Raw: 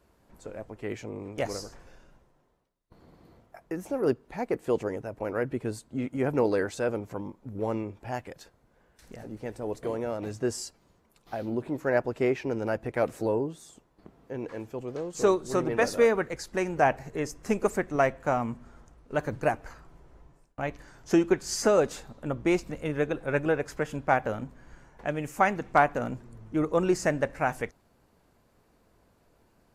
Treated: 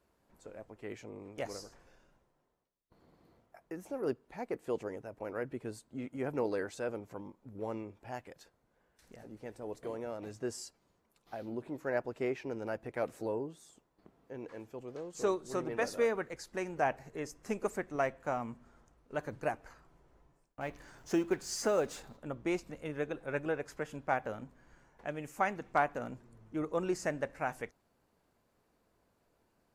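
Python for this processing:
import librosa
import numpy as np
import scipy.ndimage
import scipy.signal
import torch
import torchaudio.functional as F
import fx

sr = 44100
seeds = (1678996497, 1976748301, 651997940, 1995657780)

y = fx.law_mismatch(x, sr, coded='mu', at=(20.6, 22.16), fade=0.02)
y = fx.low_shelf(y, sr, hz=150.0, db=-5.5)
y = y * 10.0 ** (-8.0 / 20.0)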